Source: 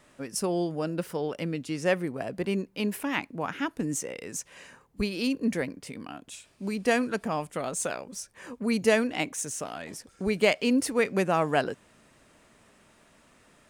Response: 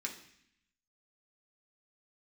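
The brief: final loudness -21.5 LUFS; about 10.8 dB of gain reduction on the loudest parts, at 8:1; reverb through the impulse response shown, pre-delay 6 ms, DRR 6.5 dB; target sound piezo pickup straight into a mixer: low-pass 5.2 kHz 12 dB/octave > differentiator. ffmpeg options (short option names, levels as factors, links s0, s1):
-filter_complex "[0:a]acompressor=threshold=0.0398:ratio=8,asplit=2[s0][s1];[1:a]atrim=start_sample=2205,adelay=6[s2];[s1][s2]afir=irnorm=-1:irlink=0,volume=0.447[s3];[s0][s3]amix=inputs=2:normalize=0,lowpass=5200,aderivative,volume=20"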